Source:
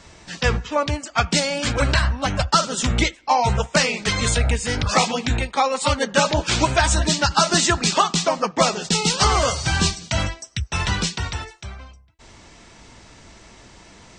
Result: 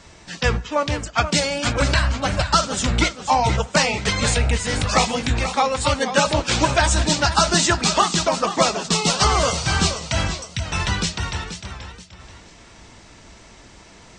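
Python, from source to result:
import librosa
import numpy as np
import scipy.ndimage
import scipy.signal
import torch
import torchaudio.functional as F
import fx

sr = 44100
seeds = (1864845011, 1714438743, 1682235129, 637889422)

y = fx.echo_warbled(x, sr, ms=480, feedback_pct=33, rate_hz=2.8, cents=106, wet_db=-10.0)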